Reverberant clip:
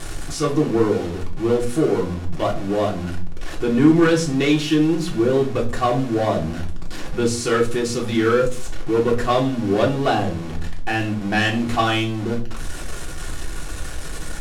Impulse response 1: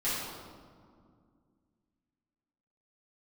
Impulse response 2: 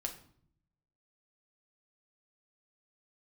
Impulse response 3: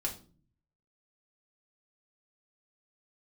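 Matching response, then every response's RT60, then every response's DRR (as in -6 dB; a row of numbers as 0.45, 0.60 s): 3; 2.1, 0.60, 0.40 s; -12.0, 3.5, -2.5 dB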